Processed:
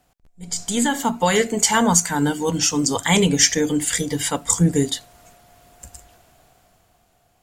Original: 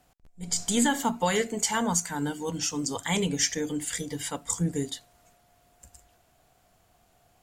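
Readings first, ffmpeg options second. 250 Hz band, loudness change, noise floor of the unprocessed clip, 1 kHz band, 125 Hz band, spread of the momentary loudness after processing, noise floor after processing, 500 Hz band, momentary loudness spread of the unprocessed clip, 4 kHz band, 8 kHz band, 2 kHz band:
+8.5 dB, +9.0 dB, -65 dBFS, +8.0 dB, +10.0 dB, 8 LU, -63 dBFS, +9.0 dB, 9 LU, +9.0 dB, +9.0 dB, +8.5 dB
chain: -af "dynaudnorm=f=220:g=11:m=11.5dB,volume=1dB"

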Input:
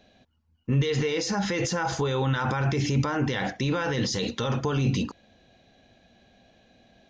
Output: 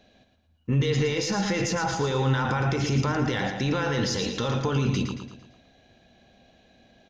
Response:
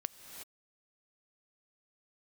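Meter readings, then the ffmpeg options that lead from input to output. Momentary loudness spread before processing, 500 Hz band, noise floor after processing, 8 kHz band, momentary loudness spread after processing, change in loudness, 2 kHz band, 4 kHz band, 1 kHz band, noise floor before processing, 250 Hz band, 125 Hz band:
3 LU, +1.0 dB, -63 dBFS, +1.0 dB, 4 LU, +1.0 dB, +1.0 dB, +1.0 dB, +1.0 dB, -66 dBFS, +1.0 dB, +1.0 dB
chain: -af "aecho=1:1:113|226|339|452|565:0.447|0.205|0.0945|0.0435|0.02,aeval=exprs='0.224*(cos(1*acos(clip(val(0)/0.224,-1,1)))-cos(1*PI/2))+0.00224*(cos(8*acos(clip(val(0)/0.224,-1,1)))-cos(8*PI/2))':c=same"

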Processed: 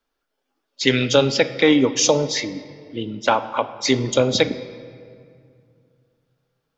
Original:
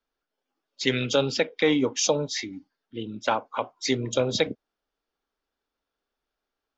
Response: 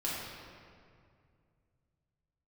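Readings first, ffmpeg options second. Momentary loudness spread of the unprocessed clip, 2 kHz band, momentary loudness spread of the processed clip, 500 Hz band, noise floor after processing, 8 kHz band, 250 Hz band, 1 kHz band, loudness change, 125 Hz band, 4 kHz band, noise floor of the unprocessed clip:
15 LU, +6.5 dB, 15 LU, +6.5 dB, -77 dBFS, n/a, +7.5 dB, +7.0 dB, +6.5 dB, +7.0 dB, +6.5 dB, under -85 dBFS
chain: -filter_complex "[0:a]asplit=2[a][b];[1:a]atrim=start_sample=2205[c];[b][c]afir=irnorm=-1:irlink=0,volume=-16dB[d];[a][d]amix=inputs=2:normalize=0,volume=5.5dB"

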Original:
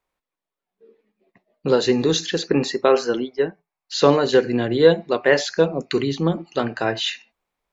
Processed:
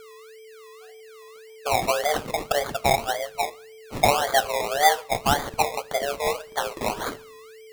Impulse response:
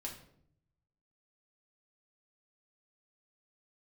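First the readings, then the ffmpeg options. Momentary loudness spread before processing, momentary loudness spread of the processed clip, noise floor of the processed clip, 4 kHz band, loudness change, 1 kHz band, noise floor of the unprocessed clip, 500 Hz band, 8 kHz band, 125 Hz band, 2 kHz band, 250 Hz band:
9 LU, 10 LU, -46 dBFS, -3.0 dB, -4.0 dB, +5.5 dB, under -85 dBFS, -8.0 dB, n/a, -8.5 dB, -1.0 dB, -14.5 dB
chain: -filter_complex "[0:a]afreqshift=290,aeval=exprs='val(0)+0.0141*sin(2*PI*440*n/s)':c=same,acrusher=samples=23:mix=1:aa=0.000001:lfo=1:lforange=13.8:lforate=1.8,asplit=2[a][b];[1:a]atrim=start_sample=2205,adelay=26[c];[b][c]afir=irnorm=-1:irlink=0,volume=-18dB[d];[a][d]amix=inputs=2:normalize=0,volume=-5dB"

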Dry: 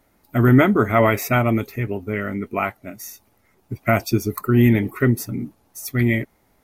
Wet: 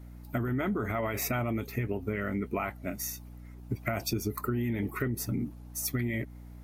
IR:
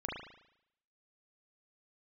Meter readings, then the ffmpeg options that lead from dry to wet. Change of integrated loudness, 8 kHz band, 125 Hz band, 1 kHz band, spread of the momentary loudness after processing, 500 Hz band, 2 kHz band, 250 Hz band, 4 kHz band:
-13.0 dB, -3.0 dB, -13.0 dB, -13.5 dB, 7 LU, -13.0 dB, -12.5 dB, -13.0 dB, -6.5 dB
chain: -af "alimiter=limit=-14.5dB:level=0:latency=1:release=19,acompressor=threshold=-28dB:ratio=6,aeval=exprs='val(0)+0.00562*(sin(2*PI*60*n/s)+sin(2*PI*2*60*n/s)/2+sin(2*PI*3*60*n/s)/3+sin(2*PI*4*60*n/s)/4+sin(2*PI*5*60*n/s)/5)':c=same"

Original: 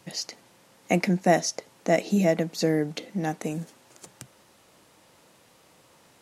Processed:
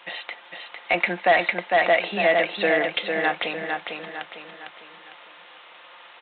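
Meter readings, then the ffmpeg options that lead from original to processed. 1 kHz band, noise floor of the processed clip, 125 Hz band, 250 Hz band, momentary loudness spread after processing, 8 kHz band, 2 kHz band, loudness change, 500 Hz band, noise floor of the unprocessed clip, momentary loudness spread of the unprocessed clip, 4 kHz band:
+7.0 dB, -48 dBFS, -12.5 dB, -7.0 dB, 19 LU, under -40 dB, +12.5 dB, +4.0 dB, +3.5 dB, -59 dBFS, 12 LU, +6.5 dB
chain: -af "highpass=980,aecho=1:1:5.7:0.3,aresample=8000,asoftclip=type=tanh:threshold=-21dB,aresample=44100,aecho=1:1:453|906|1359|1812|2265:0.562|0.236|0.0992|0.0417|0.0175,alimiter=level_in=23dB:limit=-1dB:release=50:level=0:latency=1,volume=-8.5dB"

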